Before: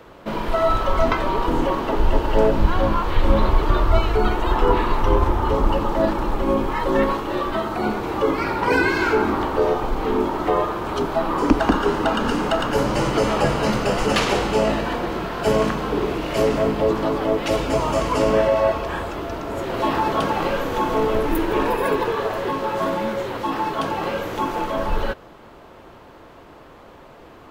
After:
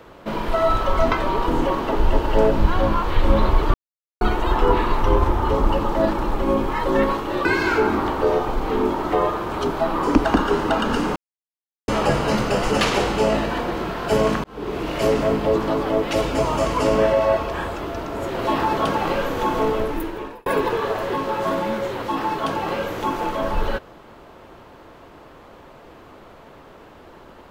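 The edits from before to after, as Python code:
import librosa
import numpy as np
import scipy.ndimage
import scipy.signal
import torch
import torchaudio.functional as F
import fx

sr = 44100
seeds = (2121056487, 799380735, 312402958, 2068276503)

y = fx.edit(x, sr, fx.silence(start_s=3.74, length_s=0.47),
    fx.cut(start_s=7.45, length_s=1.35),
    fx.silence(start_s=12.51, length_s=0.72),
    fx.fade_in_span(start_s=15.79, length_s=0.44),
    fx.fade_out_span(start_s=20.96, length_s=0.85), tone=tone)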